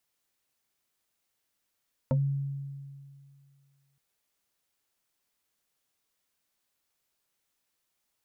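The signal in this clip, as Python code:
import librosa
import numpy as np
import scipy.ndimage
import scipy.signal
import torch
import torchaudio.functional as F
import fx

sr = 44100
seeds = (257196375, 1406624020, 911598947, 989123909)

y = fx.fm2(sr, length_s=1.87, level_db=-21, carrier_hz=139.0, ratio=2.79, index=1.5, index_s=0.13, decay_s=2.21, shape='exponential')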